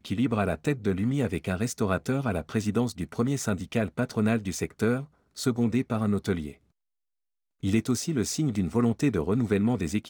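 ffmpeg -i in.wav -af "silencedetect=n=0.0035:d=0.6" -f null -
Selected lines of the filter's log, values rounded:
silence_start: 6.56
silence_end: 7.63 | silence_duration: 1.07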